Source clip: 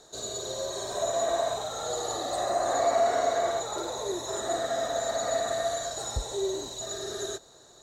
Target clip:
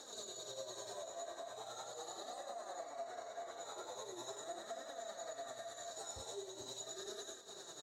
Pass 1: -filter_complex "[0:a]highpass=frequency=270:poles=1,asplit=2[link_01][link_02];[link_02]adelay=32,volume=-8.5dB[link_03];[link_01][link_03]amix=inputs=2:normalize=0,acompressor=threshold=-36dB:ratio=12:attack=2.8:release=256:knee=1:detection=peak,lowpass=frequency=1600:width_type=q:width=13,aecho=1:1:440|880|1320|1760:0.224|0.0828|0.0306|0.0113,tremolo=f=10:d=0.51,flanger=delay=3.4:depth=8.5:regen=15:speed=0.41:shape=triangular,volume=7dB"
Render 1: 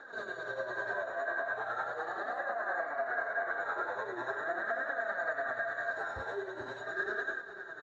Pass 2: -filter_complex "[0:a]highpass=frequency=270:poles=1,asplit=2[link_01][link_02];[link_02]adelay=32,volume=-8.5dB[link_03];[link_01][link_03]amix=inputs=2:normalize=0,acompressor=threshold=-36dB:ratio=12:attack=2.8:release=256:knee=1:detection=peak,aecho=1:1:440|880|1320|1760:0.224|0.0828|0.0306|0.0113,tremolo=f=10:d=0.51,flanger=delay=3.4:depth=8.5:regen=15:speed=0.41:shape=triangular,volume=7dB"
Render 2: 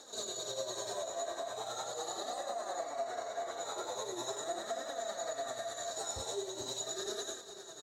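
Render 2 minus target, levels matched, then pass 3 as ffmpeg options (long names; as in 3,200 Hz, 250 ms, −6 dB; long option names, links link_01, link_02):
downward compressor: peak gain reduction −8 dB
-filter_complex "[0:a]highpass=frequency=270:poles=1,asplit=2[link_01][link_02];[link_02]adelay=32,volume=-8.5dB[link_03];[link_01][link_03]amix=inputs=2:normalize=0,acompressor=threshold=-45dB:ratio=12:attack=2.8:release=256:knee=1:detection=peak,aecho=1:1:440|880|1320|1760:0.224|0.0828|0.0306|0.0113,tremolo=f=10:d=0.51,flanger=delay=3.4:depth=8.5:regen=15:speed=0.41:shape=triangular,volume=7dB"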